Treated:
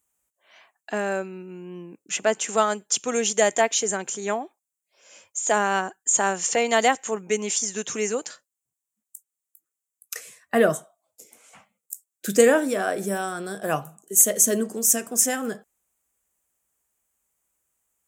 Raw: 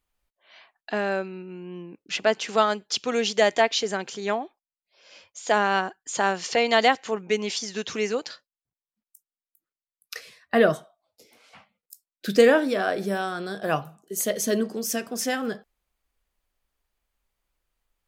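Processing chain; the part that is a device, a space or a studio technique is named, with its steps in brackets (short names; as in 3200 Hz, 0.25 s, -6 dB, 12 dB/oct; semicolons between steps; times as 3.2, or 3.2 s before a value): budget condenser microphone (HPF 95 Hz; resonant high shelf 5800 Hz +9 dB, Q 3)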